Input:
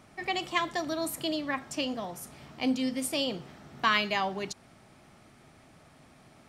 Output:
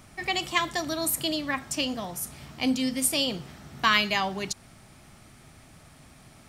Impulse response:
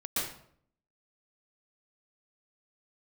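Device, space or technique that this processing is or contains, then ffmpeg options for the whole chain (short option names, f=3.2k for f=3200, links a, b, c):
smiley-face EQ: -af "lowshelf=f=94:g=9,equalizer=f=470:t=o:w=2.3:g=-4,highshelf=f=6.7k:g=9,volume=4dB"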